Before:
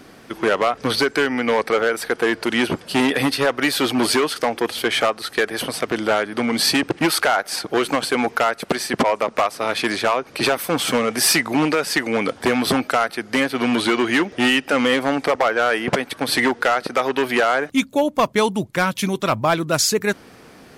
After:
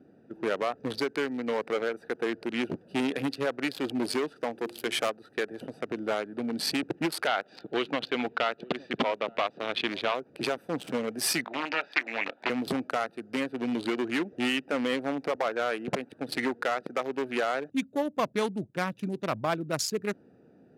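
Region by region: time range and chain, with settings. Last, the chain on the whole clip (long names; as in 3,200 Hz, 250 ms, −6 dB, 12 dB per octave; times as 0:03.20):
0:04.52–0:05.10: high-shelf EQ 5,600 Hz +11.5 dB + mains-hum notches 50/100/150/200/250/300/350/400 Hz
0:07.27–0:10.15: low-pass with resonance 3,500 Hz, resonance Q 2.6 + single-tap delay 865 ms −18.5 dB
0:11.44–0:12.50: loudspeaker in its box 450–4,300 Hz, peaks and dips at 460 Hz −9 dB, 660 Hz +4 dB, 960 Hz +4 dB, 1,400 Hz +4 dB, 2,200 Hz +9 dB, 3,700 Hz +7 dB + double-tracking delay 31 ms −12 dB + highs frequency-modulated by the lows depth 0.29 ms
whole clip: adaptive Wiener filter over 41 samples; high-pass filter 120 Hz 12 dB per octave; level −9 dB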